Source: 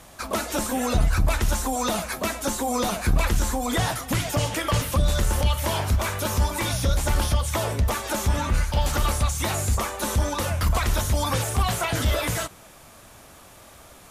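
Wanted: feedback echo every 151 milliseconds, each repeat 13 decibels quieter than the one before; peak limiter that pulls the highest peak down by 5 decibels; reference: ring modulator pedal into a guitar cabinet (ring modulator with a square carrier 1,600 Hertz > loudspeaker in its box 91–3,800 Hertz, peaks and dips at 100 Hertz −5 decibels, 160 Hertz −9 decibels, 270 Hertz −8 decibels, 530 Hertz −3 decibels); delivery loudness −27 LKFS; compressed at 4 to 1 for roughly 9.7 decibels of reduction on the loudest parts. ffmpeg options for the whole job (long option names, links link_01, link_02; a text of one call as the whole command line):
ffmpeg -i in.wav -af "acompressor=threshold=-28dB:ratio=4,alimiter=limit=-23.5dB:level=0:latency=1,aecho=1:1:151|302|453:0.224|0.0493|0.0108,aeval=exprs='val(0)*sgn(sin(2*PI*1600*n/s))':channel_layout=same,highpass=91,equalizer=frequency=100:width_type=q:width=4:gain=-5,equalizer=frequency=160:width_type=q:width=4:gain=-9,equalizer=frequency=270:width_type=q:width=4:gain=-8,equalizer=frequency=530:width_type=q:width=4:gain=-3,lowpass=frequency=3800:width=0.5412,lowpass=frequency=3800:width=1.3066,volume=4.5dB" out.wav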